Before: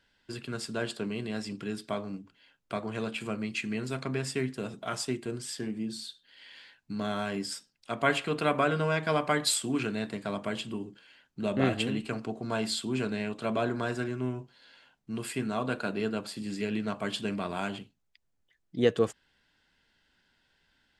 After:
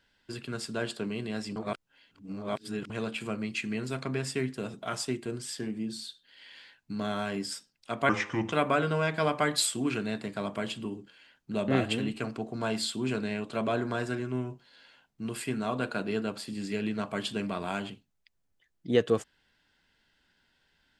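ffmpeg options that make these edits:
ffmpeg -i in.wav -filter_complex "[0:a]asplit=5[link_01][link_02][link_03][link_04][link_05];[link_01]atrim=end=1.562[link_06];[link_02]atrim=start=1.558:end=2.902,asetpts=PTS-STARTPTS,areverse[link_07];[link_03]atrim=start=2.898:end=8.094[link_08];[link_04]atrim=start=8.09:end=8.41,asetpts=PTS-STARTPTS,asetrate=32634,aresample=44100,atrim=end_sample=19070,asetpts=PTS-STARTPTS[link_09];[link_05]atrim=start=8.406[link_10];[link_06][link_07]acrossfade=duration=0.004:curve1=hsin:curve2=hsin[link_11];[link_11][link_08]acrossfade=duration=0.004:curve1=hsin:curve2=hsin[link_12];[link_12][link_09]acrossfade=duration=0.004:curve1=hsin:curve2=hsin[link_13];[link_13][link_10]acrossfade=duration=0.004:curve1=hsin:curve2=hsin" out.wav

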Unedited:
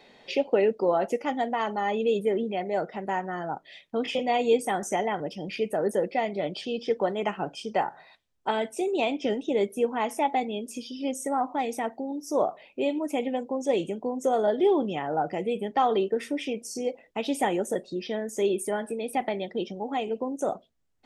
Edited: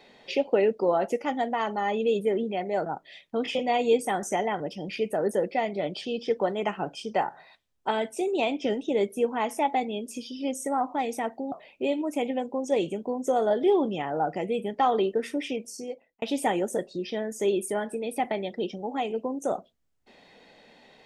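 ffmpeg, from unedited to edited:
ffmpeg -i in.wav -filter_complex "[0:a]asplit=4[link_01][link_02][link_03][link_04];[link_01]atrim=end=2.862[link_05];[link_02]atrim=start=3.458:end=12.122[link_06];[link_03]atrim=start=12.488:end=17.19,asetpts=PTS-STARTPTS,afade=type=out:start_time=4.002:duration=0.7[link_07];[link_04]atrim=start=17.19,asetpts=PTS-STARTPTS,afade=type=in:duration=0.004:curve=hsin[link_08];[link_05][link_06]acrossfade=duration=0.004:curve1=hsin:curve2=hsin[link_09];[link_07][link_08]concat=n=2:v=0:a=1[link_10];[link_09][link_10]acrossfade=duration=0.004:curve1=hsin:curve2=hsin" out.wav

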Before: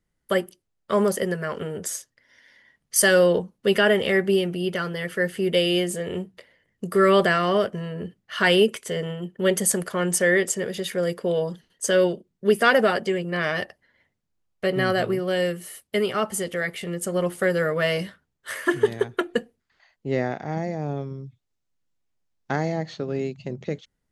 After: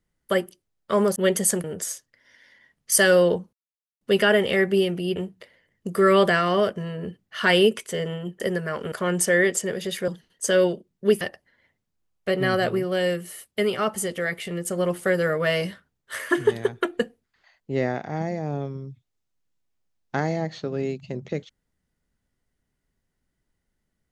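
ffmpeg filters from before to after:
ffmpeg -i in.wav -filter_complex "[0:a]asplit=9[link_01][link_02][link_03][link_04][link_05][link_06][link_07][link_08][link_09];[link_01]atrim=end=1.162[link_10];[link_02]atrim=start=9.368:end=9.852[link_11];[link_03]atrim=start=1.678:end=3.57,asetpts=PTS-STARTPTS,afade=type=out:start_time=1.888:duration=0.004:curve=hsin,apad=pad_dur=0.48[link_12];[link_04]atrim=start=3.57:end=4.722,asetpts=PTS-STARTPTS,afade=type=in:duration=0.004:curve=hsin[link_13];[link_05]atrim=start=6.128:end=9.372[link_14];[link_06]atrim=start=1.158:end=1.682[link_15];[link_07]atrim=start=9.848:end=11.012[link_16];[link_08]atrim=start=11.478:end=12.612[link_17];[link_09]atrim=start=13.568[link_18];[link_10][link_11]acrossfade=duration=0.004:curve1=hsin:curve2=hsin[link_19];[link_12][link_13]concat=n=2:v=0:a=1[link_20];[link_19][link_20]acrossfade=duration=0.004:curve1=hsin:curve2=hsin[link_21];[link_21][link_14]acrossfade=duration=0.004:curve1=hsin:curve2=hsin[link_22];[link_22][link_15]acrossfade=duration=0.004:curve1=hsin:curve2=hsin[link_23];[link_23][link_16]acrossfade=duration=0.004:curve1=hsin:curve2=hsin[link_24];[link_24][link_17]acrossfade=duration=0.004:curve1=hsin:curve2=hsin[link_25];[link_25][link_18]acrossfade=duration=0.004:curve1=hsin:curve2=hsin" out.wav

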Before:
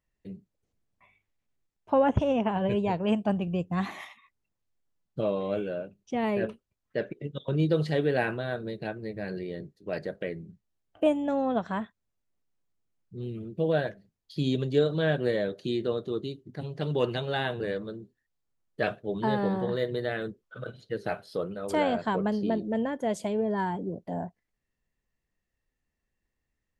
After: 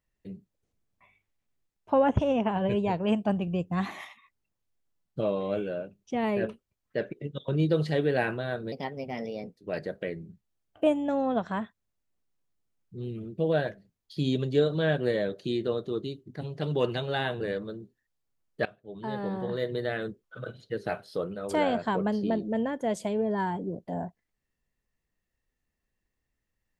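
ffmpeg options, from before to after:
ffmpeg -i in.wav -filter_complex "[0:a]asplit=4[link_01][link_02][link_03][link_04];[link_01]atrim=end=8.724[link_05];[link_02]atrim=start=8.72:end=9.77,asetpts=PTS-STARTPTS,asetrate=54243,aresample=44100,atrim=end_sample=37646,asetpts=PTS-STARTPTS[link_06];[link_03]atrim=start=9.766:end=18.85,asetpts=PTS-STARTPTS,afade=type=out:start_time=9.08:duration=0.004:curve=hsin:silence=0.0841395[link_07];[link_04]atrim=start=18.85,asetpts=PTS-STARTPTS,afade=type=in:duration=1.17:silence=0.0841395[link_08];[link_05][link_06]acrossfade=duration=0.004:curve1=hsin:curve2=hsin[link_09];[link_07][link_08]concat=n=2:v=0:a=1[link_10];[link_09][link_10]acrossfade=duration=0.004:curve1=hsin:curve2=hsin" out.wav

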